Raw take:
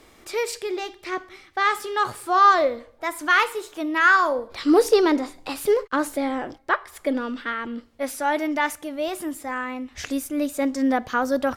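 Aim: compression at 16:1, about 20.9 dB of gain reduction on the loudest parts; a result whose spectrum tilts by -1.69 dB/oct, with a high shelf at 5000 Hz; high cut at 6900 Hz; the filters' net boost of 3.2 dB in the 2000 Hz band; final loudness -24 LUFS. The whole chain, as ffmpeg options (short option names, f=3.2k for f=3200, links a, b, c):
-af "lowpass=6.9k,equalizer=f=2k:t=o:g=5.5,highshelf=f=5k:g=-8,acompressor=threshold=-31dB:ratio=16,volume=12dB"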